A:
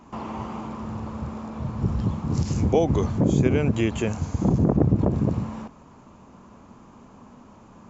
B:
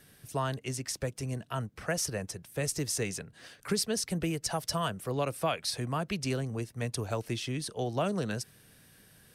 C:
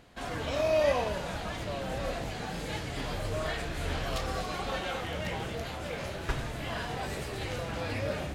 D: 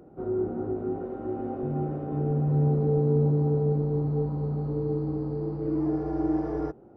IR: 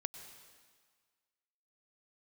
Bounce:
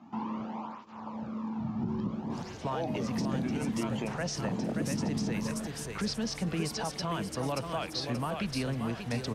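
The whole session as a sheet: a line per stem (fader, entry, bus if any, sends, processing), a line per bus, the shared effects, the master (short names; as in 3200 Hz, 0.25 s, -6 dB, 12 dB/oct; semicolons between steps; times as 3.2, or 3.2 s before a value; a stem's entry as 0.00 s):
-4.0 dB, 0.00 s, bus A, no send, echo send -19.5 dB, tape flanging out of phase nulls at 0.58 Hz, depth 2.1 ms
+1.0 dB, 2.30 s, bus A, no send, echo send -10.5 dB, dry
-11.0 dB, 2.15 s, bus B, no send, no echo send, dry
-16.0 dB, 1.60 s, bus B, no send, no echo send, limiter -20.5 dBFS, peak gain reduction 6.5 dB
bus A: 0.0 dB, speaker cabinet 110–5400 Hz, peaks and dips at 220 Hz +7 dB, 400 Hz -6 dB, 900 Hz +5 dB; limiter -24.5 dBFS, peak gain reduction 10.5 dB
bus B: 0.0 dB, limiter -37.5 dBFS, peak gain reduction 11 dB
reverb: off
echo: feedback echo 0.58 s, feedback 36%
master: dry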